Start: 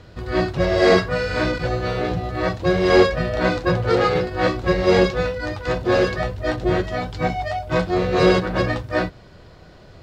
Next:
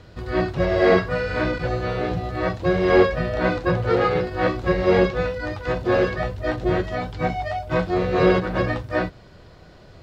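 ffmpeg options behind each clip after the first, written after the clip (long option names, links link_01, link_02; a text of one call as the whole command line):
ffmpeg -i in.wav -filter_complex "[0:a]acrossover=split=3300[link_01][link_02];[link_02]acompressor=threshold=-45dB:ratio=4:attack=1:release=60[link_03];[link_01][link_03]amix=inputs=2:normalize=0,volume=-1.5dB" out.wav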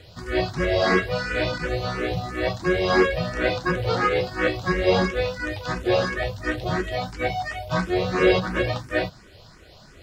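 ffmpeg -i in.wav -filter_complex "[0:a]highshelf=frequency=2600:gain=12,asplit=2[link_01][link_02];[link_02]afreqshift=2.9[link_03];[link_01][link_03]amix=inputs=2:normalize=1" out.wav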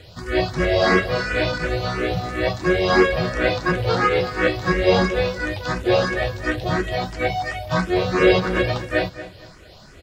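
ffmpeg -i in.wav -filter_complex "[0:a]asplit=2[link_01][link_02];[link_02]adelay=231,lowpass=frequency=4500:poles=1,volume=-14dB,asplit=2[link_03][link_04];[link_04]adelay=231,lowpass=frequency=4500:poles=1,volume=0.28,asplit=2[link_05][link_06];[link_06]adelay=231,lowpass=frequency=4500:poles=1,volume=0.28[link_07];[link_01][link_03][link_05][link_07]amix=inputs=4:normalize=0,volume=3dB" out.wav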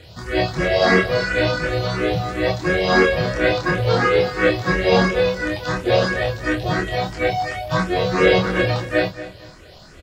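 ffmpeg -i in.wav -filter_complex "[0:a]asplit=2[link_01][link_02];[link_02]adelay=26,volume=-3dB[link_03];[link_01][link_03]amix=inputs=2:normalize=0" out.wav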